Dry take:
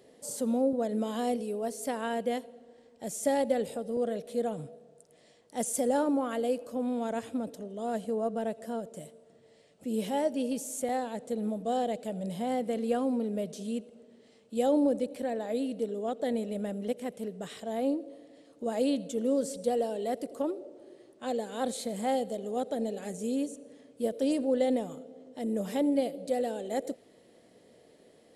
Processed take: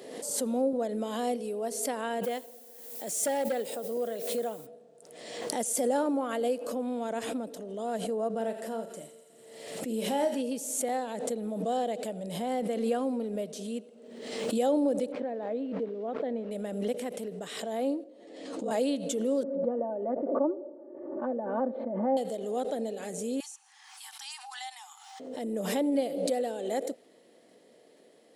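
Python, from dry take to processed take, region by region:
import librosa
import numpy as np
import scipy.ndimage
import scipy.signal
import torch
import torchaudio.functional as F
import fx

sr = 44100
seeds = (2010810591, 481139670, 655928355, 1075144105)

y = fx.highpass(x, sr, hz=310.0, slope=6, at=(2.23, 4.65), fade=0.02)
y = fx.dmg_noise_colour(y, sr, seeds[0], colour='violet', level_db=-53.0, at=(2.23, 4.65), fade=0.02)
y = fx.overload_stage(y, sr, gain_db=24.5, at=(2.23, 4.65), fade=0.02)
y = fx.chain(y, sr, fx.doubler(ms=40.0, db=-8.5),
    fx.echo_thinned(ms=84, feedback_pct=82, hz=1200.0, wet_db=-11.0), at=(8.36, 10.41))
y = fx.chain(y, sr, fx.sample_gate(floor_db=-46.5),
    fx.spacing_loss(db_at_10k=37), at=(15.12, 16.51))
y = fx.chain(y, sr, fx.lowpass(hz=8700.0, slope=24),
    fx.ring_mod(carrier_hz=22.0),
    fx.ensemble(), at=(18.04, 18.71))
y = fx.chain(y, sr, fx.lowpass(hz=1200.0, slope=24),
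    fx.comb(ms=3.4, depth=0.71), at=(19.43, 22.17))
y = fx.chain(y, sr, fx.brickwall_highpass(low_hz=740.0),
    fx.peak_eq(hz=5600.0, db=8.0, octaves=0.66),
    fx.band_squash(depth_pct=40), at=(23.4, 25.2))
y = scipy.signal.sosfilt(scipy.signal.butter(2, 230.0, 'highpass', fs=sr, output='sos'), y)
y = fx.pre_swell(y, sr, db_per_s=45.0)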